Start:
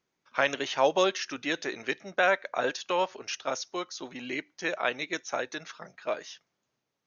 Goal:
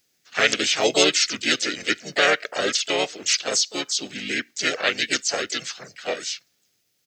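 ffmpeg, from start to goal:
-filter_complex "[0:a]asplit=4[a][b][c][d];[b]asetrate=35002,aresample=44100,atempo=1.25992,volume=0dB[e];[c]asetrate=52444,aresample=44100,atempo=0.840896,volume=-6dB[f];[d]asetrate=58866,aresample=44100,atempo=0.749154,volume=-17dB[g];[a][e][f][g]amix=inputs=4:normalize=0,crystalizer=i=5.5:c=0,equalizer=f=1k:t=o:w=0.64:g=-12,volume=1dB"

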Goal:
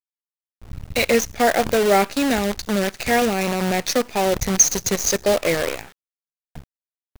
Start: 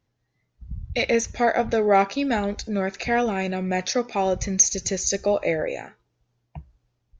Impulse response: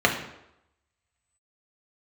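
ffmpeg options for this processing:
-af "adynamicequalizer=threshold=0.0158:dfrequency=880:dqfactor=1.4:tfrequency=880:tqfactor=1.4:attack=5:release=100:ratio=0.375:range=2.5:mode=cutabove:tftype=bell,acrusher=bits=5:dc=4:mix=0:aa=0.000001,volume=3.5dB"

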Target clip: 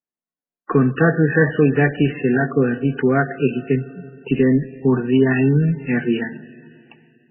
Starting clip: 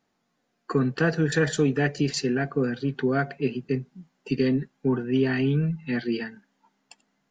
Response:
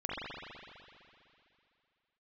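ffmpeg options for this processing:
-filter_complex "[0:a]agate=range=-33dB:threshold=-51dB:ratio=3:detection=peak,asplit=2[a][b];[1:a]atrim=start_sample=2205,asetrate=41013,aresample=44100,adelay=62[c];[b][c]afir=irnorm=-1:irlink=0,volume=-23dB[d];[a][d]amix=inputs=2:normalize=0,volume=8dB" -ar 12000 -c:a libmp3lame -b:a 8k

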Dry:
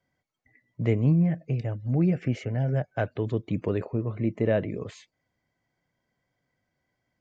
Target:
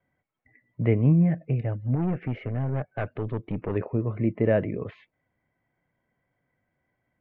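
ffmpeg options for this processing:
-filter_complex "[0:a]asettb=1/sr,asplit=3[a][b][c];[a]atrim=end=1.954[d];[b]atrim=start=1.95:end=3.76,asetpts=PTS-STARTPTS,afade=t=in:d=0.004:c=qsin,afade=t=out:st=1.806:d=0.004:c=qsin,aeval=exprs='(tanh(17.8*val(0)+0.45)-tanh(0.45))/17.8':c=same[e];[c]atrim=start=3.756[f];[d][e]acrossfade=d=0.004:c1=hsin:c2=qsin[g];[g][f]acrossfade=d=0.004:c1=qsin:c2=hsin,lowpass=f=2.6k:w=0.5412,lowpass=f=2.6k:w=1.3066,volume=2dB"

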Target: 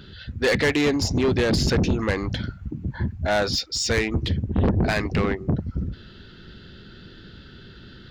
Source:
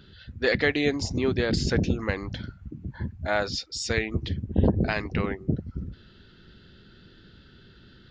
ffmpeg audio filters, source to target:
-af "asoftclip=type=tanh:threshold=-23.5dB,volume=8dB"

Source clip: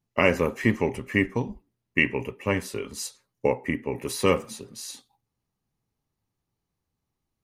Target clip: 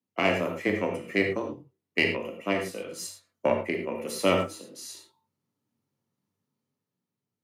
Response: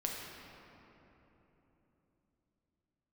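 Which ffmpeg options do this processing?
-filter_complex "[0:a]aeval=exprs='0.596*(cos(1*acos(clip(val(0)/0.596,-1,1)))-cos(1*PI/2))+0.15*(cos(2*acos(clip(val(0)/0.596,-1,1)))-cos(2*PI/2))+0.0168*(cos(7*acos(clip(val(0)/0.596,-1,1)))-cos(7*PI/2))':c=same,afreqshift=94,dynaudnorm=f=100:g=17:m=5.5dB[a];[1:a]atrim=start_sample=2205,afade=t=out:st=0.15:d=0.01,atrim=end_sample=7056,asetrate=38808,aresample=44100[b];[a][b]afir=irnorm=-1:irlink=0,volume=-6dB"

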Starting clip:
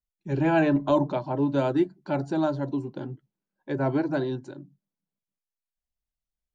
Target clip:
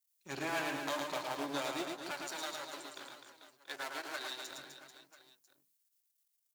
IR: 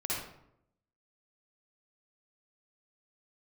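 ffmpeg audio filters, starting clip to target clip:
-filter_complex "[0:a]aeval=exprs='if(lt(val(0),0),0.251*val(0),val(0))':c=same,aderivative,acompressor=threshold=-50dB:ratio=3,asettb=1/sr,asplit=3[a][b][c];[a]atrim=end=2.114[d];[b]atrim=start=2.11:end=4.51,asetpts=PTS-STARTPTS,afade=t=in:d=0.004:c=qsin,afade=t=out:st=2.396:d=0.004:c=qsin,highpass=f=970:p=1[e];[c]atrim=start=4.506[f];[d][e]acrossfade=d=0.004:c1=hsin:c2=qsin[g];[g][f]acrossfade=d=0.004:c1=qsin:c2=hsin,aecho=1:1:110|253|438.9|680.6|994.7:0.631|0.398|0.251|0.158|0.1,volume=14.5dB"

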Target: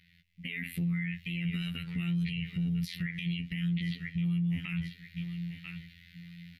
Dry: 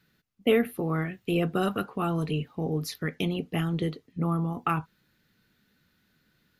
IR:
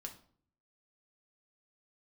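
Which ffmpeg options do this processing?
-filter_complex "[0:a]acompressor=threshold=-28dB:ratio=6,equalizer=f=88:t=o:w=1.9:g=11,asplit=2[a][b];[b]asetrate=35002,aresample=44100,atempo=1.25992,volume=-10dB[c];[a][c]amix=inputs=2:normalize=0,afftfilt=real='hypot(re,im)*cos(PI*b)':imag='0':win_size=2048:overlap=0.75,firequalizer=gain_entry='entry(110,0);entry(190,0);entry(300,-19);entry(750,-27);entry(1100,-25);entry(2000,15);entry(6500,-4)':delay=0.05:min_phase=1,aecho=1:1:989|1978:0.133|0.0333,dynaudnorm=f=130:g=5:m=9dB,alimiter=level_in=1.5dB:limit=-24dB:level=0:latency=1:release=74,volume=-1.5dB"

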